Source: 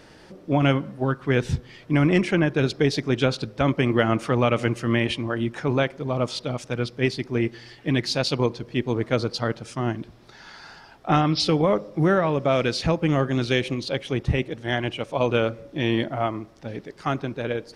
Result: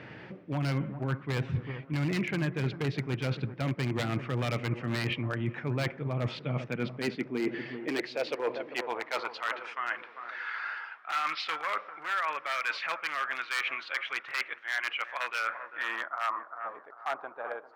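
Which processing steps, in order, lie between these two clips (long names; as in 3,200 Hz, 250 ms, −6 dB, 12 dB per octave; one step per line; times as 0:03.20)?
low-pass filter sweep 2,300 Hz → 770 Hz, 0:15.37–0:16.70
wave folding −13.5 dBFS
high-pass filter sweep 120 Hz → 1,300 Hz, 0:06.24–0:09.71
bucket-brigade delay 396 ms, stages 4,096, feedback 46%, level −15.5 dB
reversed playback
downward compressor 4 to 1, threshold −30 dBFS, peak gain reduction 15.5 dB
reversed playback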